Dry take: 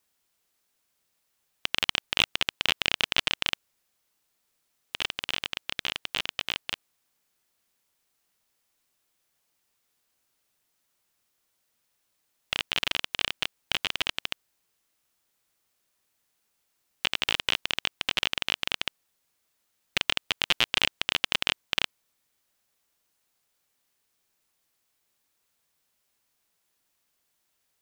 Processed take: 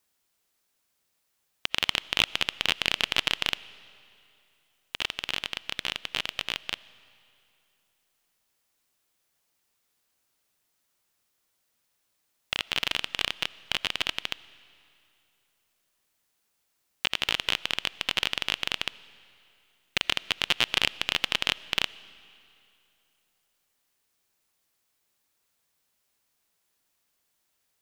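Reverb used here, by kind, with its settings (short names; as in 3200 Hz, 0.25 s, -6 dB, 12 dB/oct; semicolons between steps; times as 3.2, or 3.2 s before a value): digital reverb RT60 2.7 s, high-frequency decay 0.9×, pre-delay 40 ms, DRR 19.5 dB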